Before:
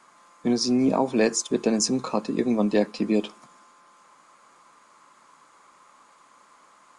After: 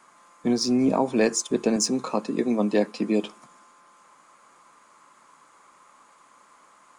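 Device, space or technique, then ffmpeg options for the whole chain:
exciter from parts: -filter_complex "[0:a]asettb=1/sr,asplit=3[a][b][c];[a]atrim=end=1.764[d];[b]atrim=start=1.76:end=3.24,asetpts=PTS-STARTPTS,afade=t=in:d=0.004:c=qsin,afade=t=out:st=1.476:d=0.004:c=qsin,highpass=160[e];[c]atrim=start=3.236[f];[d][e]acrossfade=d=0.004:c1=hsin:c2=qsin[g];[g][f]acrossfade=d=0.004:c1=qsin:c2=hsin,asplit=2[h][i];[i]highpass=4.1k,asoftclip=type=tanh:threshold=-31.5dB,highpass=3.5k,volume=-8dB[j];[h][j]amix=inputs=2:normalize=0"

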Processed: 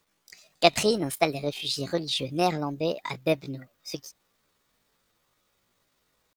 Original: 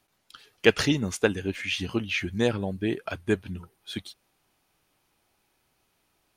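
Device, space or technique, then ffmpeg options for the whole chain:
chipmunk voice: -af "asetrate=66075,aresample=44100,atempo=0.66742"

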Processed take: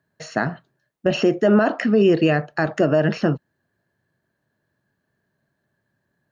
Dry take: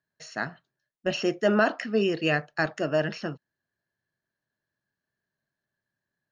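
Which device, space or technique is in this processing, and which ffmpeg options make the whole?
mastering chain: -af "highpass=44,equalizer=f=5.4k:t=o:w=0.2:g=-3,acompressor=threshold=-27dB:ratio=2.5,tiltshelf=f=1.4k:g=5.5,alimiter=level_in=17.5dB:limit=-1dB:release=50:level=0:latency=1,volume=-6.5dB"

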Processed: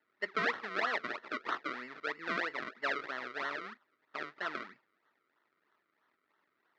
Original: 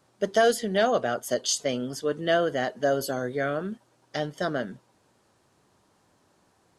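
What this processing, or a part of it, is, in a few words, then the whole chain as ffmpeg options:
circuit-bent sampling toy: -af "acrusher=samples=35:mix=1:aa=0.000001:lfo=1:lforange=35:lforate=3.1,highpass=490,equalizer=f=530:t=q:w=4:g=-9,equalizer=f=760:t=q:w=4:g=-7,equalizer=f=1.3k:t=q:w=4:g=7,equalizer=f=1.9k:t=q:w=4:g=9,equalizer=f=3k:t=q:w=4:g=-5,lowpass=f=4.1k:w=0.5412,lowpass=f=4.1k:w=1.3066,volume=-8dB"

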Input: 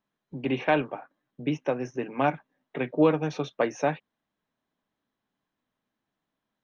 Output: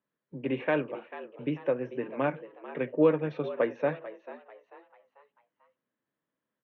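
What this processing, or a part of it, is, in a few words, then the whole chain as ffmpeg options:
frequency-shifting delay pedal into a guitar cabinet: -filter_complex "[0:a]asplit=5[a][b][c][d][e];[b]adelay=442,afreqshift=91,volume=-14.5dB[f];[c]adelay=884,afreqshift=182,volume=-22.2dB[g];[d]adelay=1326,afreqshift=273,volume=-30dB[h];[e]adelay=1768,afreqshift=364,volume=-37.7dB[i];[a][f][g][h][i]amix=inputs=5:normalize=0,highpass=80,equalizer=f=86:t=q:w=4:g=-8,equalizer=f=200:t=q:w=4:g=-3,equalizer=f=520:t=q:w=4:g=6,equalizer=f=760:t=q:w=4:g=-8,equalizer=f=1.8k:t=q:w=4:g=3,lowpass=f=3.7k:w=0.5412,lowpass=f=3.7k:w=1.3066,highshelf=f=3.2k:g=-9,asplit=2[j][k];[k]adelay=66,lowpass=f=890:p=1,volume=-23dB,asplit=2[l][m];[m]adelay=66,lowpass=f=890:p=1,volume=0.44,asplit=2[n][o];[o]adelay=66,lowpass=f=890:p=1,volume=0.44[p];[j][l][n][p]amix=inputs=4:normalize=0,volume=-3dB"

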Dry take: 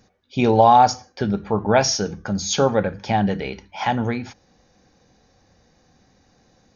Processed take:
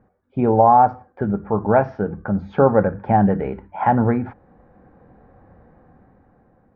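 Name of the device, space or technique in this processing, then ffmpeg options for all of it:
action camera in a waterproof case: -af "lowpass=f=1.5k:w=0.5412,lowpass=f=1.5k:w=1.3066,dynaudnorm=f=250:g=11:m=14dB" -ar 48000 -c:a aac -b:a 128k

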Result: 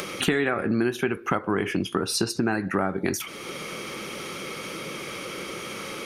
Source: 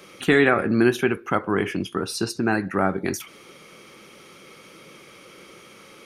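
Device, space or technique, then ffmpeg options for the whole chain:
upward and downward compression: -af "acompressor=mode=upward:threshold=-37dB:ratio=2.5,acompressor=threshold=-30dB:ratio=6,volume=8.5dB"

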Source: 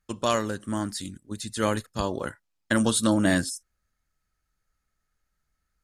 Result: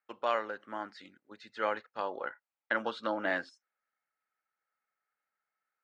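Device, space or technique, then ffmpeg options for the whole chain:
phone earpiece: -filter_complex "[0:a]highpass=480,equalizer=f=510:t=q:w=4:g=4,equalizer=f=810:t=q:w=4:g=7,equalizer=f=1.4k:t=q:w=4:g=6,equalizer=f=2.1k:t=q:w=4:g=5,equalizer=f=3.5k:t=q:w=4:g=-6,lowpass=f=3.7k:w=0.5412,lowpass=f=3.7k:w=1.3066,asettb=1/sr,asplit=3[a][b][c];[a]atrim=end=1.784[d];[b]atrim=start=1.78:end=3.28,asetpts=PTS-STARTPTS,afade=t=in:d=0.004:c=qsin,afade=t=out:st=1.496:d=0.004:c=qsin,lowpass=6.7k[e];[c]atrim=start=3.276[f];[d][e]acrossfade=d=0.004:c1=hsin:c2=qsin[g];[g][f]acrossfade=d=0.004:c1=qsin:c2=hsin,volume=-7.5dB"

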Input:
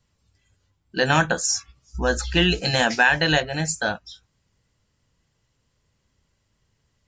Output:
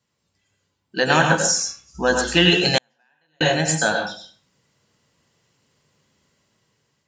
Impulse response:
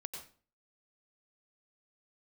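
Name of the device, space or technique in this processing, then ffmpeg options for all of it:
far laptop microphone: -filter_complex "[1:a]atrim=start_sample=2205[a];[0:a][a]afir=irnorm=-1:irlink=0,highpass=160,dynaudnorm=f=390:g=5:m=8dB,asettb=1/sr,asplit=3[b][c][d];[b]atrim=end=2.784[e];[c]atrim=start=2.78:end=3.41,asetpts=PTS-STARTPTS,afade=t=in:d=0.004:c=qsin,afade=t=out:st=0.626:d=0.004:c=qsin,agate=range=-51dB:threshold=-5dB:ratio=16:detection=peak[f];[d]atrim=start=3.406[g];[e][f]acrossfade=d=0.004:c1=hsin:c2=qsin[h];[h][g]acrossfade=d=0.004:c1=qsin:c2=hsin,volume=2dB"

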